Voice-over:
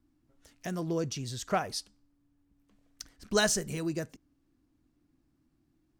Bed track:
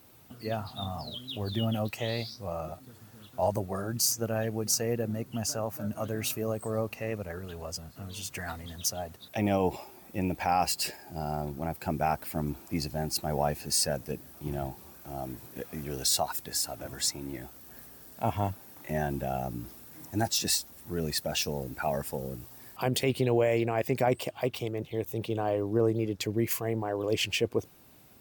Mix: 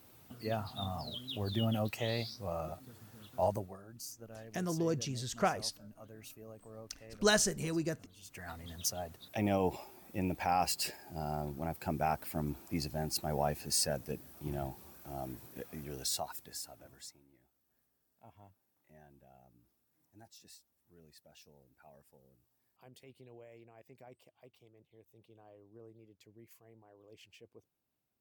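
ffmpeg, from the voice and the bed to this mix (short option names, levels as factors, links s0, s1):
-filter_complex "[0:a]adelay=3900,volume=0.841[s0];[1:a]volume=3.98,afade=t=out:st=3.43:d=0.35:silence=0.149624,afade=t=in:st=8.17:d=0.55:silence=0.177828,afade=t=out:st=15.24:d=2.02:silence=0.0562341[s1];[s0][s1]amix=inputs=2:normalize=0"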